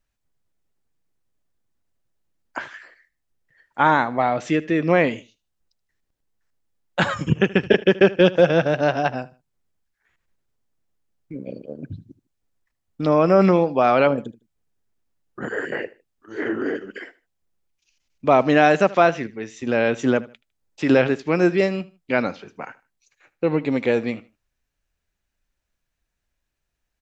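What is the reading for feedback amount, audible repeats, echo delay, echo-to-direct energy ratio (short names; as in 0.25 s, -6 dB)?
28%, 2, 77 ms, -19.5 dB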